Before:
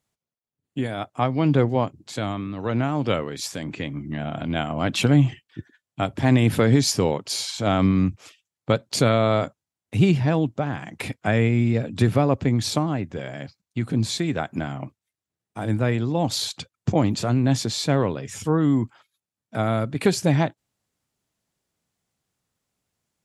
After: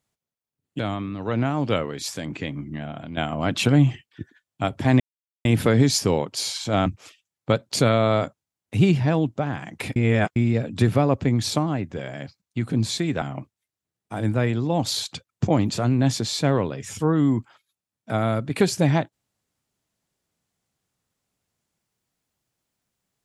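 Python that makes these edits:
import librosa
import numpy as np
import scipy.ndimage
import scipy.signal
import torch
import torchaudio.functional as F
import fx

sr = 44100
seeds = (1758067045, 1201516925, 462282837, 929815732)

y = fx.edit(x, sr, fx.cut(start_s=0.79, length_s=1.38),
    fx.fade_out_to(start_s=3.89, length_s=0.66, floor_db=-10.0),
    fx.insert_silence(at_s=6.38, length_s=0.45),
    fx.cut(start_s=7.79, length_s=0.27),
    fx.reverse_span(start_s=11.16, length_s=0.4),
    fx.cut(start_s=14.42, length_s=0.25), tone=tone)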